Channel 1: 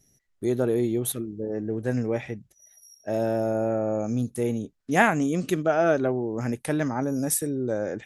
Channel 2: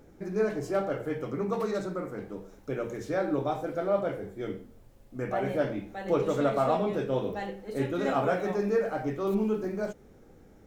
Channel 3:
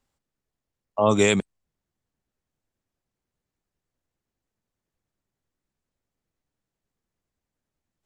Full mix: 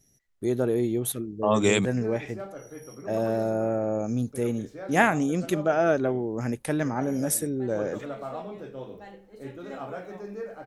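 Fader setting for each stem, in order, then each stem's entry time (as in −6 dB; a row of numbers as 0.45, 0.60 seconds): −1.0, −10.0, −3.0 decibels; 0.00, 1.65, 0.45 seconds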